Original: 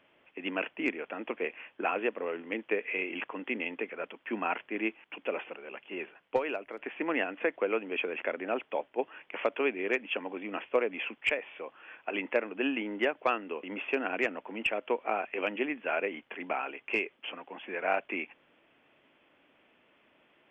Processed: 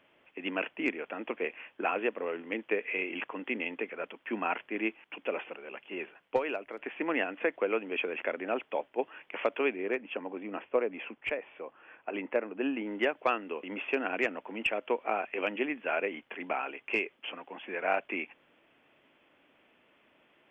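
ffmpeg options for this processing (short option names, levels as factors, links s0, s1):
-filter_complex "[0:a]asettb=1/sr,asplit=3[s0][s1][s2];[s0]atrim=end=9.764[s3];[s1]atrim=start=9.76:end=12.87,asetpts=PTS-STARTPTS,afade=t=in:d=0.004:c=qsin,afade=t=out:st=3.106:d=0.004:c=qsin,lowpass=f=1300:p=1[s4];[s2]atrim=start=12.866[s5];[s3][s4]acrossfade=d=0.004:c1=hsin:c2=qsin[s6];[s6][s5]acrossfade=d=0.004:c1=qsin:c2=hsin"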